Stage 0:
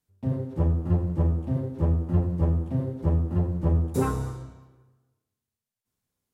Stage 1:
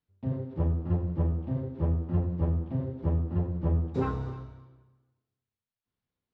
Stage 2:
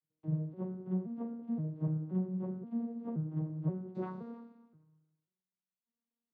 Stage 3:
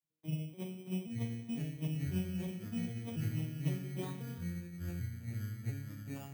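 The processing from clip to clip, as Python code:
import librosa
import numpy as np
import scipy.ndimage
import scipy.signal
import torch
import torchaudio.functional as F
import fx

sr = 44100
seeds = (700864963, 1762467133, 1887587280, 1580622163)

y1 = scipy.signal.sosfilt(scipy.signal.butter(4, 4200.0, 'lowpass', fs=sr, output='sos'), x)
y1 = y1 + 10.0 ** (-18.5 / 20.0) * np.pad(y1, (int(304 * sr / 1000.0), 0))[:len(y1)]
y1 = y1 * 10.0 ** (-4.0 / 20.0)
y2 = fx.vocoder_arp(y1, sr, chord='minor triad', root=51, every_ms=525)
y2 = y2 * 10.0 ** (-3.5 / 20.0)
y3 = fx.bit_reversed(y2, sr, seeds[0], block=16)
y3 = fx.echo_pitch(y3, sr, ms=780, semitones=-5, count=2, db_per_echo=-3.0)
y3 = y3 * 10.0 ** (-3.5 / 20.0)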